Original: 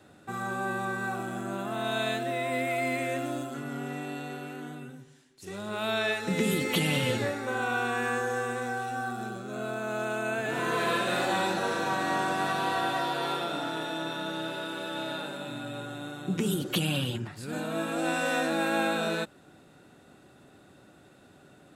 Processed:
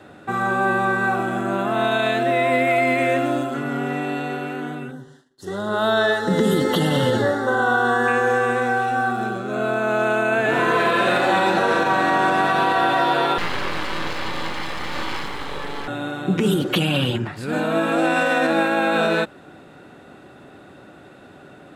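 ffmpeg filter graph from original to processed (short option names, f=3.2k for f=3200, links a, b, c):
-filter_complex "[0:a]asettb=1/sr,asplit=3[a][b][c];[a]atrim=end=4.914[d];[b]atrim=start=4.91:end=8.08,asetpts=PTS-STARTPTS,afade=t=in:d=0.004:c=qsin,afade=t=out:st=3.166:d=0.004:c=qsin,asuperstop=centerf=2400:order=4:qfactor=1.9,agate=range=-33dB:threshold=-57dB:ratio=3:release=100:detection=peak[e];[c]atrim=start=8.076[f];[d][e]acrossfade=d=0.004:c1=hsin:c2=qsin[g];[g][f]acrossfade=d=0.004:c1=qsin:c2=hsin,asettb=1/sr,asplit=3[h][i][j];[h]atrim=end=13.384[k];[i]atrim=start=13.38:end=15.88,asetpts=PTS-STARTPTS,afade=t=in:d=0.004:c=qsin,afade=t=out:st=2.496:d=0.004:c=qsin,aeval=exprs='abs(val(0))':c=same,bandreject=f=660:w=7.2[l];[j]atrim=start=15.876[m];[k][l]acrossfade=d=0.004:c1=hsin:c2=qsin[n];[n][m]acrossfade=d=0.004:c1=qsin:c2=hsin,bass=f=250:g=-4,treble=f=4k:g=-11,alimiter=level_in=21dB:limit=-1dB:release=50:level=0:latency=1,volume=-8.5dB"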